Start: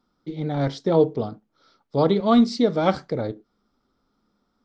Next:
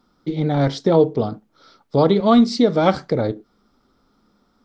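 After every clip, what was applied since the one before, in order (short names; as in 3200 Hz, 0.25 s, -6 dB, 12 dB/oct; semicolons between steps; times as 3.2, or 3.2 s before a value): compressor 1.5:1, threshold -29 dBFS, peak gain reduction 6.5 dB; gain +9 dB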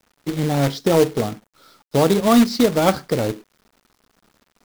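companded quantiser 4-bit; gain -1 dB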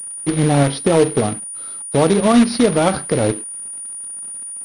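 limiter -11 dBFS, peak gain reduction 10 dB; pulse-width modulation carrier 9500 Hz; gain +5.5 dB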